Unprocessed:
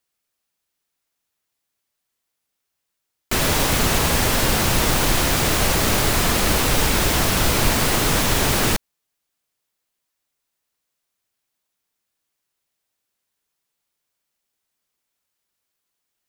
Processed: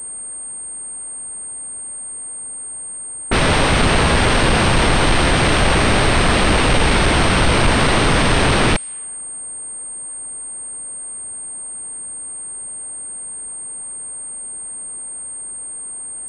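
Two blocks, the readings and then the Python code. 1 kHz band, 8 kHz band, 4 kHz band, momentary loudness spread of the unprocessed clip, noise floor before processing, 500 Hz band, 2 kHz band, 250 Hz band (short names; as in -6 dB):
+6.0 dB, +3.0 dB, +3.0 dB, 1 LU, -79 dBFS, +5.5 dB, +6.0 dB, +5.5 dB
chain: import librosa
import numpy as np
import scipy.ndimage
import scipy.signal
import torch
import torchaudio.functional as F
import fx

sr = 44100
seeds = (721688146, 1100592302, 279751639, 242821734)

y = fx.env_lowpass(x, sr, base_hz=870.0, full_db=-17.5)
y = fx.power_curve(y, sr, exponent=0.5)
y = fx.pwm(y, sr, carrier_hz=8600.0)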